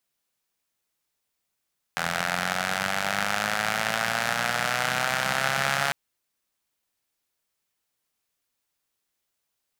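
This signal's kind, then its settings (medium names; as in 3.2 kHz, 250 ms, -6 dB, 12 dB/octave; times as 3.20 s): four-cylinder engine model, changing speed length 3.95 s, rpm 2500, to 4200, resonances 180/740/1400 Hz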